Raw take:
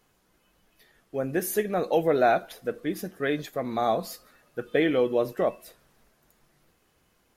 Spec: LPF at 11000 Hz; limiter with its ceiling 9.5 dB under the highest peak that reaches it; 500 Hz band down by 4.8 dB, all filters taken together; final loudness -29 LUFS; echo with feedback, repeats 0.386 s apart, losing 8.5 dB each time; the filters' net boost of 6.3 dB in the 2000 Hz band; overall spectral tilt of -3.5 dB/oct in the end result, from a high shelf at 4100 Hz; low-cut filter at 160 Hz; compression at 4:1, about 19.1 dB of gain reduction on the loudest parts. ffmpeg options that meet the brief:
-af "highpass=160,lowpass=11k,equalizer=f=500:t=o:g=-6.5,equalizer=f=2k:t=o:g=6.5,highshelf=f=4.1k:g=9,acompressor=threshold=-42dB:ratio=4,alimiter=level_in=10dB:limit=-24dB:level=0:latency=1,volume=-10dB,aecho=1:1:386|772|1158|1544:0.376|0.143|0.0543|0.0206,volume=17dB"

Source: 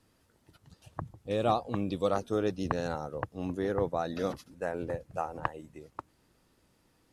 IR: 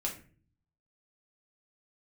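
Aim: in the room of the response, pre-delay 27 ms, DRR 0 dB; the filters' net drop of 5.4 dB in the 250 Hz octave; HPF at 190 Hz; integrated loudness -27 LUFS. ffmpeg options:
-filter_complex "[0:a]highpass=190,equalizer=f=250:t=o:g=-5.5,asplit=2[a][b];[1:a]atrim=start_sample=2205,adelay=27[c];[b][c]afir=irnorm=-1:irlink=0,volume=-2.5dB[d];[a][d]amix=inputs=2:normalize=0,volume=4.5dB"

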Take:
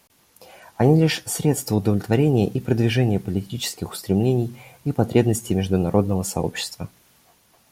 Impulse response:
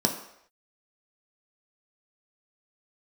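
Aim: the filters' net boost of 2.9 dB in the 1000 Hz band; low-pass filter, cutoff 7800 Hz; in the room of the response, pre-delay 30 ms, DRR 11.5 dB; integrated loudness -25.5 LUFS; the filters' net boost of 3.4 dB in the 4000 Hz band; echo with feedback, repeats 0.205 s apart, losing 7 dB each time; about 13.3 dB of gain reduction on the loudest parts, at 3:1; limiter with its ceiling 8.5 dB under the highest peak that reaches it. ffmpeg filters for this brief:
-filter_complex "[0:a]lowpass=7.8k,equalizer=f=1k:t=o:g=4,equalizer=f=4k:t=o:g=4.5,acompressor=threshold=-29dB:ratio=3,alimiter=limit=-21dB:level=0:latency=1,aecho=1:1:205|410|615|820|1025:0.447|0.201|0.0905|0.0407|0.0183,asplit=2[a][b];[1:a]atrim=start_sample=2205,adelay=30[c];[b][c]afir=irnorm=-1:irlink=0,volume=-22dB[d];[a][d]amix=inputs=2:normalize=0,volume=6dB"

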